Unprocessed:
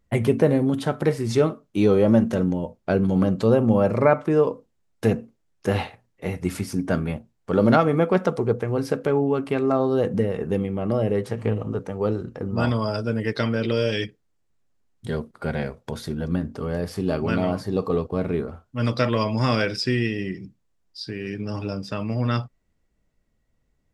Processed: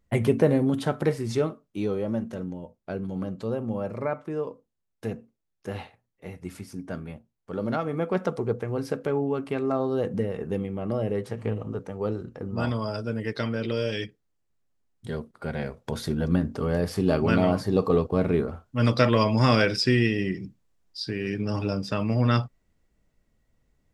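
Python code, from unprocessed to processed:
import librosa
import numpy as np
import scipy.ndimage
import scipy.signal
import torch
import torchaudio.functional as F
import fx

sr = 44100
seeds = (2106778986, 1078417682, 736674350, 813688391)

y = fx.gain(x, sr, db=fx.line((0.97, -2.0), (2.07, -11.5), (7.71, -11.5), (8.24, -5.0), (15.52, -5.0), (16.01, 1.5)))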